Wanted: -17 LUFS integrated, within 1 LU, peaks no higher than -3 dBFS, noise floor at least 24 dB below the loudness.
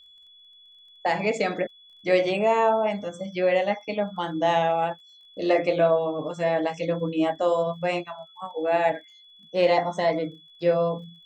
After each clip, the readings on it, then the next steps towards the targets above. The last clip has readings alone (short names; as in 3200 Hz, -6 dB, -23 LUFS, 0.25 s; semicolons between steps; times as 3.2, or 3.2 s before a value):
ticks 28/s; steady tone 3400 Hz; tone level -50 dBFS; loudness -25.0 LUFS; peak -9.5 dBFS; loudness target -17.0 LUFS
-> de-click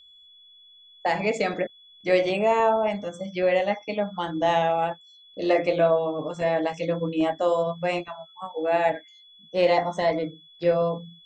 ticks 0/s; steady tone 3400 Hz; tone level -50 dBFS
-> notch 3400 Hz, Q 30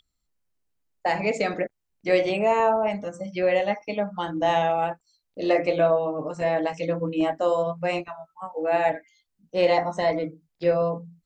steady tone none; loudness -25.0 LUFS; peak -9.5 dBFS; loudness target -17.0 LUFS
-> gain +8 dB; limiter -3 dBFS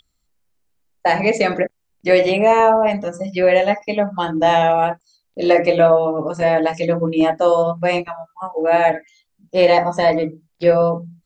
loudness -17.0 LUFS; peak -3.0 dBFS; noise floor -70 dBFS